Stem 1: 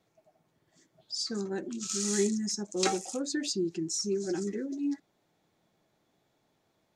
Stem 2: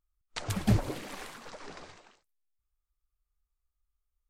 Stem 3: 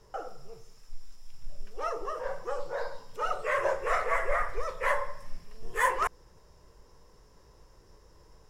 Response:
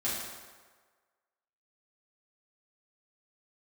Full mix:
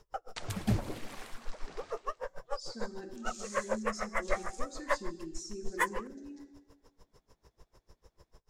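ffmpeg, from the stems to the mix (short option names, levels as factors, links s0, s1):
-filter_complex "[0:a]alimiter=limit=0.0631:level=0:latency=1:release=30,adelay=1450,volume=0.2,asplit=2[s0][s1];[s1]volume=0.335[s2];[1:a]volume=0.562,asplit=2[s3][s4];[s4]volume=0.0794[s5];[2:a]aeval=exprs='val(0)*pow(10,-38*(0.5-0.5*cos(2*PI*6.7*n/s))/20)':c=same,volume=1.12[s6];[3:a]atrim=start_sample=2205[s7];[s2][s5]amix=inputs=2:normalize=0[s8];[s8][s7]afir=irnorm=-1:irlink=0[s9];[s0][s3][s6][s9]amix=inputs=4:normalize=0"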